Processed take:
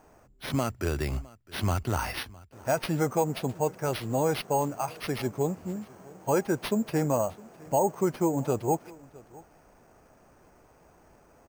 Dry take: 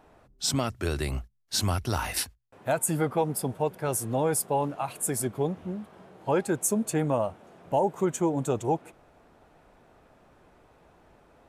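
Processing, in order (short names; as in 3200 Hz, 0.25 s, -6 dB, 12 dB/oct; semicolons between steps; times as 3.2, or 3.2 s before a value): band shelf 6100 Hz -10.5 dB; sample-and-hold 6×; echo 0.66 s -22.5 dB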